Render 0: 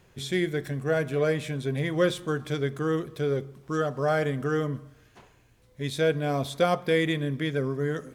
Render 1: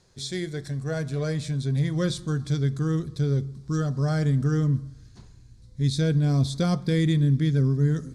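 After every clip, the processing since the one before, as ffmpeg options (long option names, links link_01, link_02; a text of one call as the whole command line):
ffmpeg -i in.wav -af "asubboost=boost=9.5:cutoff=190,lowpass=frequency=9700:width=0.5412,lowpass=frequency=9700:width=1.3066,highshelf=frequency=3500:width_type=q:width=3:gain=6.5,volume=-4dB" out.wav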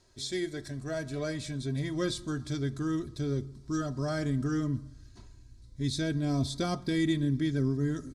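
ffmpeg -i in.wav -af "aecho=1:1:3.1:0.63,volume=-4dB" out.wav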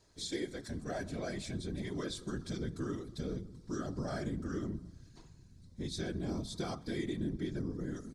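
ffmpeg -i in.wav -af "acompressor=threshold=-31dB:ratio=6,afftfilt=real='hypot(re,im)*cos(2*PI*random(0))':imag='hypot(re,im)*sin(2*PI*random(1))':win_size=512:overlap=0.75,volume=3dB" out.wav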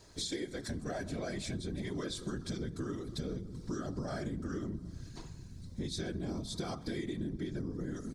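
ffmpeg -i in.wav -af "acompressor=threshold=-46dB:ratio=4,volume=9.5dB" out.wav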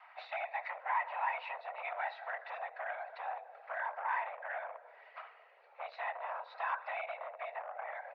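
ffmpeg -i in.wav -af "afreqshift=64,volume=33dB,asoftclip=hard,volume=-33dB,highpass=frequency=560:width_type=q:width=0.5412,highpass=frequency=560:width_type=q:width=1.307,lowpass=frequency=2400:width_type=q:width=0.5176,lowpass=frequency=2400:width_type=q:width=0.7071,lowpass=frequency=2400:width_type=q:width=1.932,afreqshift=250,volume=8.5dB" out.wav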